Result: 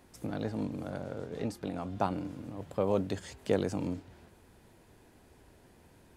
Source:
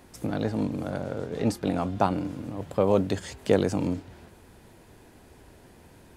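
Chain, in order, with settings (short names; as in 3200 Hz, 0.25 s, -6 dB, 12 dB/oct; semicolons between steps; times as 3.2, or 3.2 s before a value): 1.45–1.91 compressor 4:1, threshold -25 dBFS, peak gain reduction 5.5 dB; gain -7 dB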